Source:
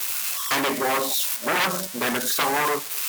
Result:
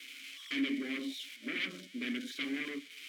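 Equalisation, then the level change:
formant filter i
low-shelf EQ 82 Hz −11 dB
0.0 dB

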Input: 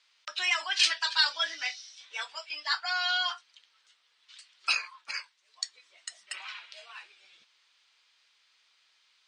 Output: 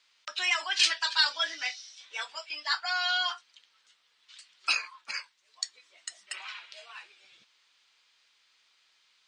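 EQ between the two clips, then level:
low-shelf EQ 240 Hz +10 dB
parametric band 7,100 Hz +2.5 dB 0.28 octaves
0.0 dB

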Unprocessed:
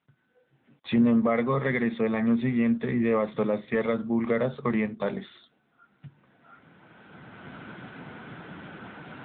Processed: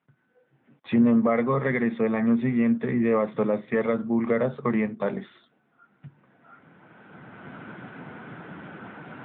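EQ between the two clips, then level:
high-pass filter 97 Hz
low-pass filter 2,400 Hz 12 dB per octave
+2.0 dB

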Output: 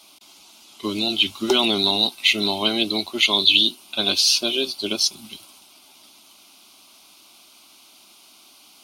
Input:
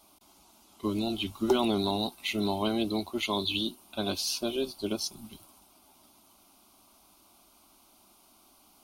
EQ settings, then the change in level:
meter weighting curve D
+5.0 dB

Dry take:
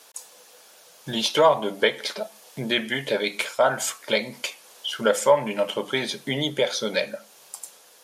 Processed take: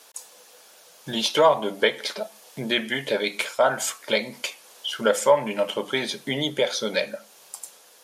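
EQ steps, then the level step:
parametric band 120 Hz −3.5 dB 0.57 octaves
0.0 dB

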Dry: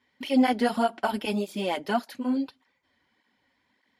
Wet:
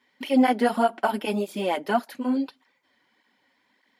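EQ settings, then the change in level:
Bessel high-pass filter 220 Hz, order 2
dynamic equaliser 4,900 Hz, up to −7 dB, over −49 dBFS, Q 0.73
+4.0 dB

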